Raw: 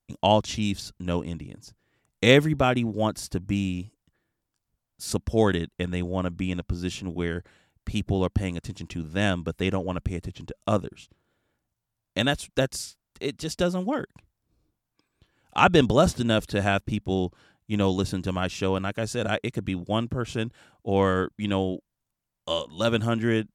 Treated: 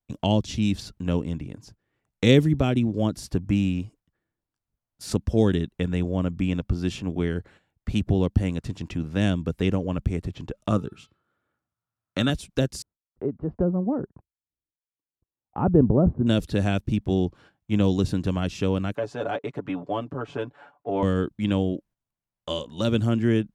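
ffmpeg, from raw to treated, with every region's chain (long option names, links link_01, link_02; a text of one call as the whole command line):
ffmpeg -i in.wav -filter_complex "[0:a]asettb=1/sr,asplit=3[link_01][link_02][link_03];[link_01]atrim=end=10.704[link_04];[link_02]atrim=start=10.7:end=12.3,asetpts=PTS-STARTPTS,afade=type=in:duration=0.004:curve=qsin,afade=type=out:start_time=1.596:duration=0.004:curve=qsin,highpass=82,equalizer=frequency=1300:width_type=o:width=0.37:gain=13,bandreject=frequency=436.3:width_type=h:width=4,bandreject=frequency=872.6:width_type=h:width=4,bandreject=frequency=1308.9:width_type=h:width=4,bandreject=frequency=1745.2:width_type=h:width=4,bandreject=frequency=2181.5:width_type=h:width=4,bandreject=frequency=2617.8:width_type=h:width=4,bandreject=frequency=3054.1:width_type=h:width=4,bandreject=frequency=3490.4:width_type=h:width=4,bandreject=frequency=3926.7:width_type=h:width=4,bandreject=frequency=4363:width_type=h:width=4,bandreject=frequency=4799.3:width_type=h:width=4,bandreject=frequency=5235.6:width_type=h:width=4[link_05];[link_03]atrim=start=12.296[link_06];[link_04][link_05]acrossfade=duration=0.004:curve1=hsin:curve2=qsin[link_07];[link_07][link_06]acrossfade=duration=0.004:curve1=qsin:curve2=hsin,asettb=1/sr,asplit=3[link_08][link_09][link_10];[link_08]atrim=end=12.824[link_11];[link_09]atrim=start=12.82:end=16.27,asetpts=PTS-STARTPTS,afade=type=in:duration=0.004:curve=qsin,afade=type=out:start_time=3.446:duration=0.004:curve=qsin,lowpass=frequency=1100:width=0.5412,lowpass=frequency=1100:width=1.3066,agate=range=-25dB:threshold=-55dB:ratio=16:release=100:detection=peak[link_12];[link_10]atrim=start=16.266[link_13];[link_11][link_12]acrossfade=duration=0.004:curve1=hsin:curve2=qsin[link_14];[link_14][link_13]acrossfade=duration=0.004:curve1=qsin:curve2=hsin,asettb=1/sr,asplit=3[link_15][link_16][link_17];[link_15]atrim=end=18.954[link_18];[link_16]atrim=start=18.95:end=21.03,asetpts=PTS-STARTPTS,afade=type=in:duration=0.004:curve=qsin,afade=type=out:start_time=2.076:duration=0.004:curve=qsin,aecho=1:1:7:0.81,atrim=end_sample=91728,acontrast=66,bandpass=frequency=870:width_type=q:width=1.5[link_19];[link_17]atrim=start=21.026[link_20];[link_18][link_19]acrossfade=duration=0.004:curve1=hsin:curve2=qsin[link_21];[link_21][link_20]acrossfade=duration=0.004:curve1=qsin:curve2=hsin,agate=range=-9dB:threshold=-52dB:ratio=16:detection=peak,highshelf=frequency=3800:gain=-9.5,acrossover=split=420|3000[link_22][link_23][link_24];[link_23]acompressor=threshold=-41dB:ratio=2.5[link_25];[link_22][link_25][link_24]amix=inputs=3:normalize=0,volume=4dB" out.wav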